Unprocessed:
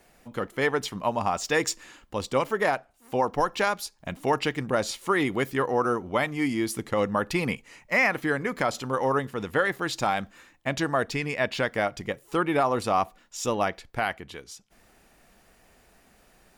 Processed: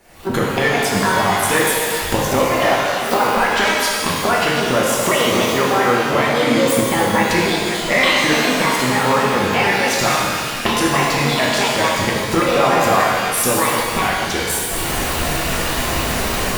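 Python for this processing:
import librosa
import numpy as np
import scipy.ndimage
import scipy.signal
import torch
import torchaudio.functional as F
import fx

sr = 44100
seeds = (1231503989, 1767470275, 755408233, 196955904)

y = fx.pitch_trill(x, sr, semitones=8.0, every_ms=146)
y = fx.recorder_agc(y, sr, target_db=-17.0, rise_db_per_s=64.0, max_gain_db=30)
y = fx.rev_shimmer(y, sr, seeds[0], rt60_s=2.2, semitones=12, shimmer_db=-8, drr_db=-4.5)
y = y * librosa.db_to_amplitude(3.5)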